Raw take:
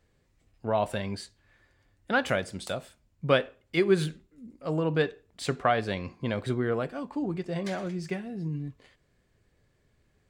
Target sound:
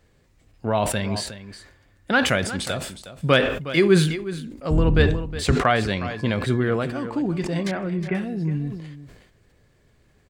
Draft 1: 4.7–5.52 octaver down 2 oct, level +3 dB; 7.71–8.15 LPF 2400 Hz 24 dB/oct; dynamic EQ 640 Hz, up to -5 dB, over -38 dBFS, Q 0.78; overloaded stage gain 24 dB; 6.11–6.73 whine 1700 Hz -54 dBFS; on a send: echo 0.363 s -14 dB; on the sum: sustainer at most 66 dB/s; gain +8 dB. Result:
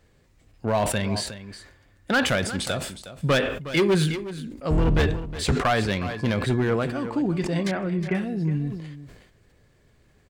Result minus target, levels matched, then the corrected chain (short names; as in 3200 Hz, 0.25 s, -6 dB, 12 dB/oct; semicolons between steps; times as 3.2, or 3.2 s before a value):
overloaded stage: distortion +30 dB
4.7–5.52 octaver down 2 oct, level +3 dB; 7.71–8.15 LPF 2400 Hz 24 dB/oct; dynamic EQ 640 Hz, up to -5 dB, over -38 dBFS, Q 0.78; overloaded stage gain 13.5 dB; 6.11–6.73 whine 1700 Hz -54 dBFS; on a send: echo 0.363 s -14 dB; on the sum: sustainer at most 66 dB/s; gain +8 dB